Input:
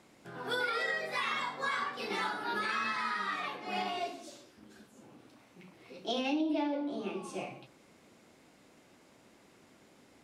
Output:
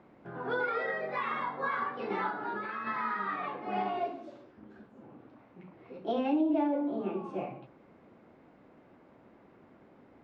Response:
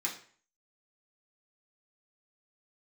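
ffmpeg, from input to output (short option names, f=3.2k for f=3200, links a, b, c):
-filter_complex "[0:a]asettb=1/sr,asplit=3[a][b][c];[a]atrim=end=2.294[d];[b]atrim=start=2.29:end=2.87,asetpts=PTS-STARTPTS,afade=t=in:d=0.004:c=qsin,afade=t=out:st=0.576:d=0.004:c=qsin,acompressor=threshold=-35dB:ratio=6[e];[c]atrim=start=2.866[f];[d][e]acrossfade=d=0.004:c1=hsin:c2=qsin[g];[g][f]acrossfade=d=0.004:c1=qsin:c2=hsin,lowpass=1.4k,volume=4dB"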